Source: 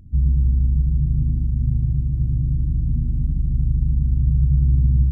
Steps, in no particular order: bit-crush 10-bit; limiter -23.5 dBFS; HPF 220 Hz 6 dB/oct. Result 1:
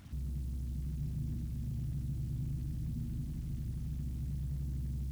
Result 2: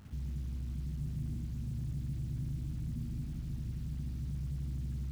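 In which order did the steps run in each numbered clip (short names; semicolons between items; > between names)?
limiter > bit-crush > HPF; limiter > HPF > bit-crush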